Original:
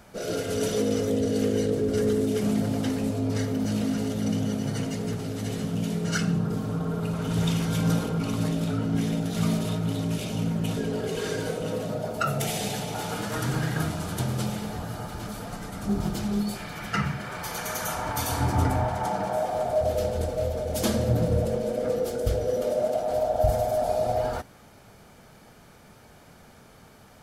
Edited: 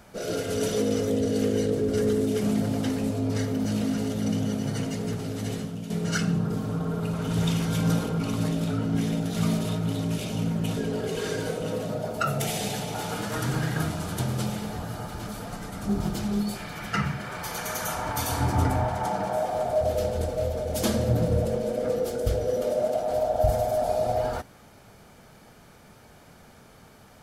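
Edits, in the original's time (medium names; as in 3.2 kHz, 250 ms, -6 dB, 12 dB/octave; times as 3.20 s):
5.54–5.90 s: fade out quadratic, to -8.5 dB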